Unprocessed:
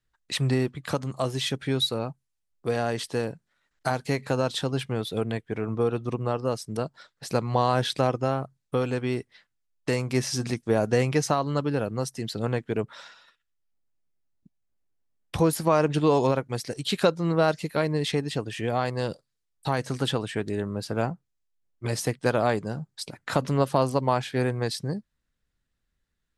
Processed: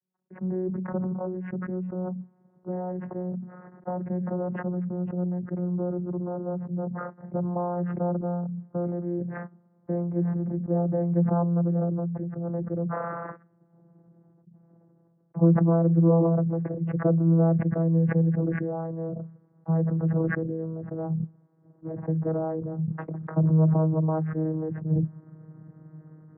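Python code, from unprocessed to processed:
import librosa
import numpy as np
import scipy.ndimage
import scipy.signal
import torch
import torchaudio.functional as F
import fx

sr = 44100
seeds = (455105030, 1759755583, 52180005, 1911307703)

y = fx.vocoder_glide(x, sr, note=54, semitones=-3)
y = scipy.ndimage.gaussian_filter1d(y, 8.0, mode='constant')
y = fx.sustainer(y, sr, db_per_s=21.0)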